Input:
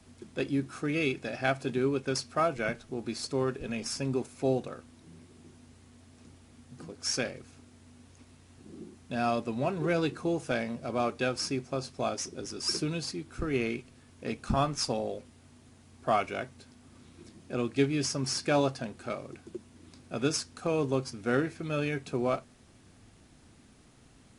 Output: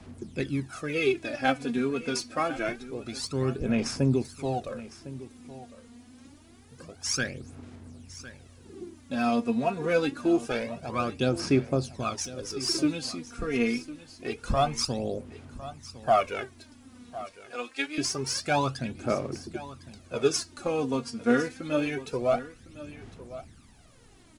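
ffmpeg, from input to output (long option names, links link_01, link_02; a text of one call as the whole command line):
ffmpeg -i in.wav -filter_complex "[0:a]asettb=1/sr,asplit=3[link_01][link_02][link_03];[link_01]atrim=end=17.234[link_04];[link_02]atrim=start=17.23:end=17.98,asetpts=PTS-STARTPTS,afade=type=in:duration=0.004:curve=qsin,afade=type=out:start_time=0.746:duration=0.004:curve=qsin,highpass=790[link_05];[link_03]atrim=start=17.976[link_06];[link_04][link_05]acrossfade=duration=0.004:curve1=hsin:curve2=qsin[link_07];[link_07][link_06]acrossfade=duration=0.004:curve1=qsin:curve2=hsin,aphaser=in_gain=1:out_gain=1:delay=4.3:decay=0.69:speed=0.26:type=sinusoidal,asplit=2[link_08][link_09];[link_09]aecho=0:1:1056:0.158[link_10];[link_08][link_10]amix=inputs=2:normalize=0" out.wav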